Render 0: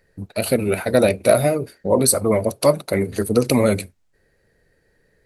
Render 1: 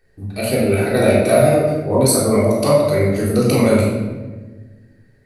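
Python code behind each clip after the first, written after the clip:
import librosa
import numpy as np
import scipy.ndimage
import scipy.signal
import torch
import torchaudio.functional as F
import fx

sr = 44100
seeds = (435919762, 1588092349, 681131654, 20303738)

y = fx.room_shoebox(x, sr, seeds[0], volume_m3=930.0, walls='mixed', distance_m=3.6)
y = y * 10.0 ** (-5.0 / 20.0)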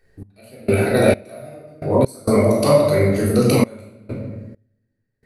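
y = fx.step_gate(x, sr, bpm=66, pattern='x..xx...x.xxxxx', floor_db=-24.0, edge_ms=4.5)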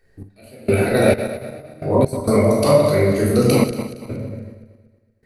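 y = fx.reverse_delay_fb(x, sr, ms=116, feedback_pct=57, wet_db=-10.0)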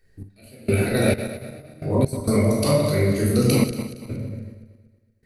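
y = fx.peak_eq(x, sr, hz=770.0, db=-8.5, octaves=2.4)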